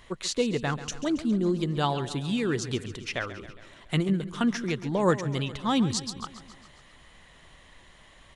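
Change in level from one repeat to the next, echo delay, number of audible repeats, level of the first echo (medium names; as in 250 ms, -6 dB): -4.5 dB, 137 ms, 5, -14.0 dB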